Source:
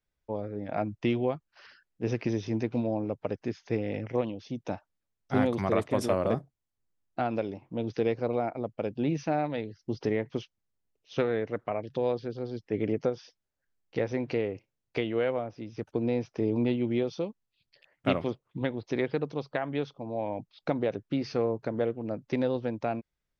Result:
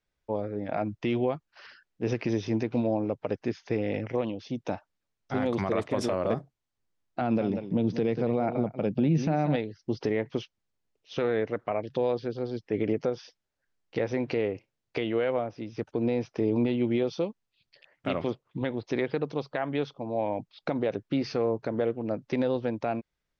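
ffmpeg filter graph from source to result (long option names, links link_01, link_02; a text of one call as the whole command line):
ffmpeg -i in.wav -filter_complex "[0:a]asettb=1/sr,asplit=3[link_01][link_02][link_03];[link_01]atrim=end=7.214[link_04];[link_02]atrim=start=7.21:end=9.56,asetpts=PTS-STARTPTS,afade=type=in:duration=0.004:curve=qsin,afade=type=out:start_time=2.346:duration=0.004:curve=qsin,equalizer=frequency=170:width_type=o:width=1.3:gain=11.5,aecho=1:1:188:0.237,atrim=end_sample=103635[link_05];[link_03]atrim=start=9.556[link_06];[link_04][link_05]acrossfade=duration=0.004:curve1=hsin:curve2=qsin[link_07];[link_07][link_06]acrossfade=duration=0.004:curve1=qsin:curve2=hsin,lowpass=6700,lowshelf=frequency=180:gain=-4,alimiter=limit=-21dB:level=0:latency=1:release=56,volume=4dB" out.wav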